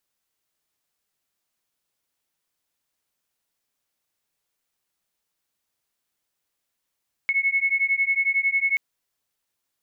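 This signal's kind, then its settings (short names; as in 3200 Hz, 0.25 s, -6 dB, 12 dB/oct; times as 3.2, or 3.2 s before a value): beating tones 2190 Hz, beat 11 Hz, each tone -22.5 dBFS 1.48 s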